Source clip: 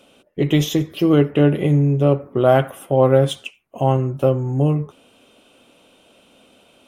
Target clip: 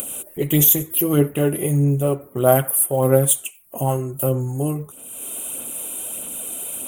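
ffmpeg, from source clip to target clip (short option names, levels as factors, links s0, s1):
-af "aphaser=in_gain=1:out_gain=1:delay=3:decay=0.38:speed=1.6:type=sinusoidal,acompressor=mode=upward:threshold=0.0631:ratio=2.5,aexciter=amount=13.1:drive=9.8:freq=7800,volume=0.596"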